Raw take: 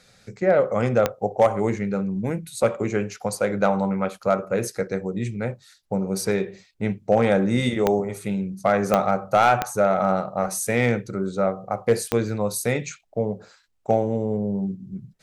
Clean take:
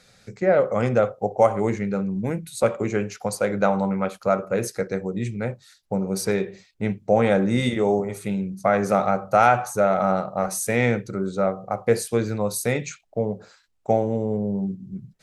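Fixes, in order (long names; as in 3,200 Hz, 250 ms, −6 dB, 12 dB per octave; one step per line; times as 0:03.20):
clipped peaks rebuilt −9 dBFS
click removal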